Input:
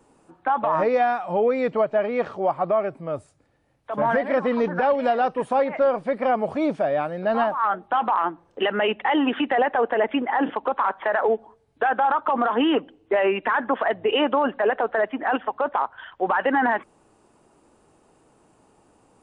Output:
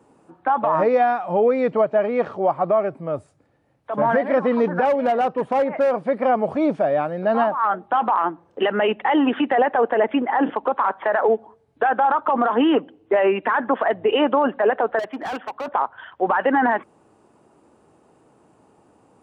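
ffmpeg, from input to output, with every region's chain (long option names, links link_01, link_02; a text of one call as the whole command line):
ffmpeg -i in.wav -filter_complex "[0:a]asettb=1/sr,asplit=3[link_01][link_02][link_03];[link_01]atrim=end=4.854[link_04];[link_02]atrim=start=4.85:end=5.92,asetpts=PTS-STARTPTS,afade=type=in:duration=0.004:curve=qsin,afade=type=out:start_time=1.066:duration=0.004:curve=qsin,lowpass=frequency=2600:poles=1,asoftclip=type=hard:threshold=-17.5dB[link_05];[link_03]atrim=start=5.916[link_06];[link_04][link_05]acrossfade=duration=0.004:curve1=hsin:curve2=qsin[link_07];[link_07][link_06]acrossfade=duration=0.004:curve1=qsin:curve2=hsin,asettb=1/sr,asplit=3[link_08][link_09][link_10];[link_08]atrim=end=14.994[link_11];[link_09]atrim=start=14.99:end=15.68,asetpts=PTS-STARTPTS,afade=type=in:duration=0.004:curve=qsin,afade=type=out:start_time=0.686:duration=0.004:curve=qsin,lowshelf=frequency=350:gain=-6.5,asoftclip=type=hard:threshold=-27.5dB[link_12];[link_10]atrim=start=15.676[link_13];[link_11][link_12]acrossfade=duration=0.004:curve1=hsin:curve2=qsin[link_14];[link_14][link_13]acrossfade=duration=0.004:curve1=qsin:curve2=hsin,highpass=84,highshelf=frequency=2100:gain=-7.5,volume=3.5dB" out.wav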